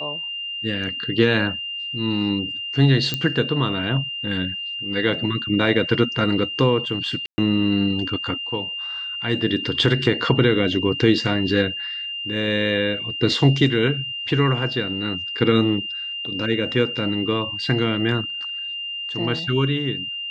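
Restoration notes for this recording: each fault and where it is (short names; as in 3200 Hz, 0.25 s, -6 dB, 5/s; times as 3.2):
tone 2800 Hz -27 dBFS
3.14 pop -8 dBFS
7.26–7.38 gap 0.12 s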